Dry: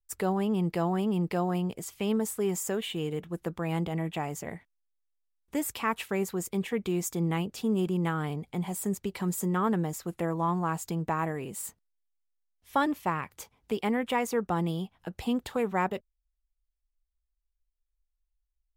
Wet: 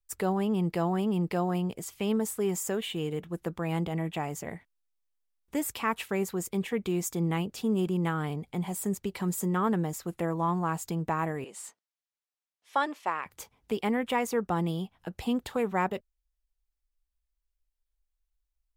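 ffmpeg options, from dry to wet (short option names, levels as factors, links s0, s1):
-filter_complex "[0:a]asettb=1/sr,asplit=3[s0][s1][s2];[s0]atrim=end=11.444[s3];[s1]atrim=start=11.44:end=13.26,asetpts=PTS-STARTPTS,afade=t=in:d=0.004:c=qsin,afade=t=out:st=1.816:d=0.004:c=qsin,highpass=480,lowpass=7500[s4];[s2]atrim=start=13.256[s5];[s3][s4]acrossfade=d=0.004:c1=hsin:c2=qsin[s6];[s6][s5]acrossfade=d=0.004:c1=qsin:c2=hsin"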